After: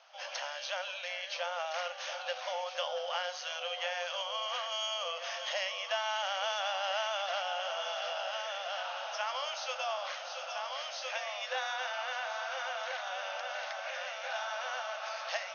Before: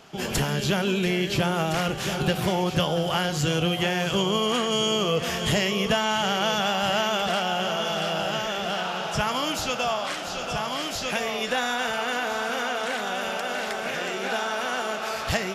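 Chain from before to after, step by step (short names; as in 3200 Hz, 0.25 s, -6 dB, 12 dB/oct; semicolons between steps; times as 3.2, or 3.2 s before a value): FFT band-pass 500–6600 Hz; gain -9 dB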